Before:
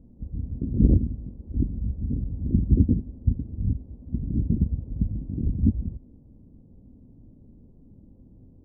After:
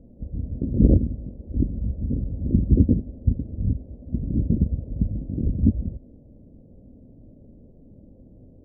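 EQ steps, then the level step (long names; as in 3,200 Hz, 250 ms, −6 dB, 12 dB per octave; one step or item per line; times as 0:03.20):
low-pass with resonance 600 Hz, resonance Q 3.5
+1.5 dB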